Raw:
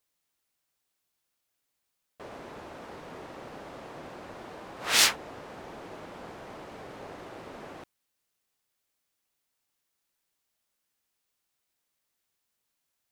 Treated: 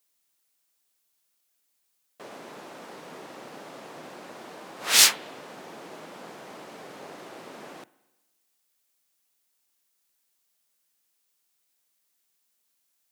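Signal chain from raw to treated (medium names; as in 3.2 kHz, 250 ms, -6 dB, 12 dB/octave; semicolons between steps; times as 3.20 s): high-pass 150 Hz 24 dB/octave; treble shelf 4 kHz +8.5 dB; reverberation RT60 1.1 s, pre-delay 44 ms, DRR 19.5 dB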